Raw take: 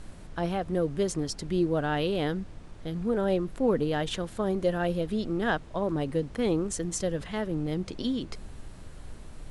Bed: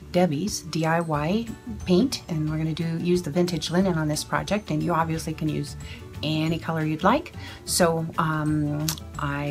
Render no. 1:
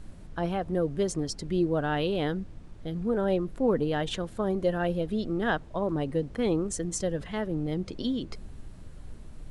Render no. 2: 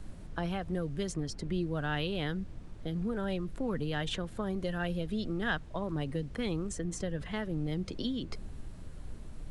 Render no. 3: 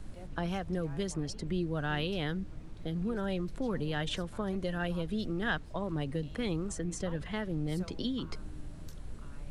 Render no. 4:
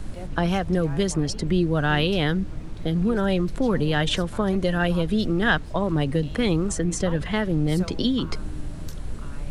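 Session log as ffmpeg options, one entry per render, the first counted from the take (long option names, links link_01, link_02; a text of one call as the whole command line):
ffmpeg -i in.wav -af "afftdn=noise_reduction=6:noise_floor=-46" out.wav
ffmpeg -i in.wav -filter_complex "[0:a]acrossover=split=180|1300|3000[link_01][link_02][link_03][link_04];[link_02]acompressor=threshold=-36dB:ratio=6[link_05];[link_04]alimiter=level_in=8.5dB:limit=-24dB:level=0:latency=1:release=492,volume=-8.5dB[link_06];[link_01][link_05][link_03][link_06]amix=inputs=4:normalize=0" out.wav
ffmpeg -i in.wav -i bed.wav -filter_complex "[1:a]volume=-30dB[link_01];[0:a][link_01]amix=inputs=2:normalize=0" out.wav
ffmpeg -i in.wav -af "volume=11.5dB" out.wav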